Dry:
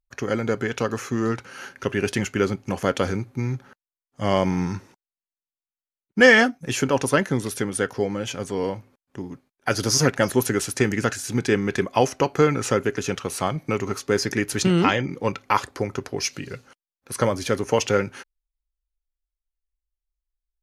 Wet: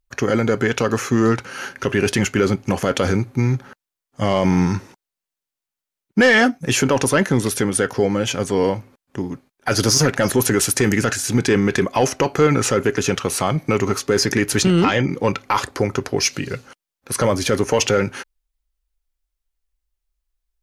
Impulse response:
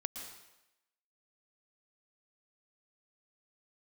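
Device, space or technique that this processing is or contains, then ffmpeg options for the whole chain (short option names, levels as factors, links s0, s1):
soft clipper into limiter: -filter_complex "[0:a]asettb=1/sr,asplit=3[s0][s1][s2];[s0]atrim=end=10.614[s3];[s1]atrim=start=10.61:end=11.03,asetpts=PTS-STARTPTS,afade=t=in:d=0.004:c=qsin,afade=t=out:st=0.416:d=0.004:c=qsin,highshelf=f=12000:g=10.5[s4];[s2]atrim=start=11.026[s5];[s3][s4]acrossfade=d=0.004:c1=hsin:c2=qsin[s6];[s6][s5]acrossfade=d=0.004:c1=qsin:c2=hsin,asoftclip=type=tanh:threshold=0.422,alimiter=limit=0.178:level=0:latency=1:release=19,volume=2.51"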